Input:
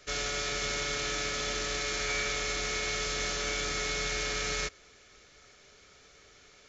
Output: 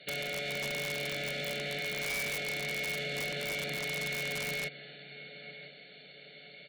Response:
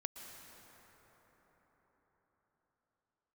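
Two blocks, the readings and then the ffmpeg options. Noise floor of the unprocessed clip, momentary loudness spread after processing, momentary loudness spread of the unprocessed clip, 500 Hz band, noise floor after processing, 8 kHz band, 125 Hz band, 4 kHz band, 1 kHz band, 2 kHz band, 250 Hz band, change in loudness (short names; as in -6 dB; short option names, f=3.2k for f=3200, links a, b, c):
-58 dBFS, 16 LU, 1 LU, -2.0 dB, -53 dBFS, n/a, -0.5 dB, -4.0 dB, -7.5 dB, -0.5 dB, -1.0 dB, -2.5 dB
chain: -filter_complex "[0:a]acrossover=split=2800[a][b];[b]acompressor=threshold=-44dB:ratio=4:attack=1:release=60[c];[a][c]amix=inputs=2:normalize=0,aecho=1:1:1.4:0.55,aecho=1:1:999|1998|2997:0.112|0.0494|0.0217,asplit=2[d][e];[1:a]atrim=start_sample=2205,highshelf=f=3.8k:g=6.5[f];[e][f]afir=irnorm=-1:irlink=0,volume=-10.5dB[g];[d][g]amix=inputs=2:normalize=0,afftfilt=real='re*between(b*sr/4096,130,4500)':imag='im*between(b*sr/4096,130,4500)':win_size=4096:overlap=0.75,volume=29.5dB,asoftclip=hard,volume=-29.5dB,acompressor=threshold=-40dB:ratio=1.5,asuperstop=centerf=1100:order=4:qfactor=0.94,aeval=exprs='(mod(33.5*val(0)+1,2)-1)/33.5':c=same,volume=3.5dB"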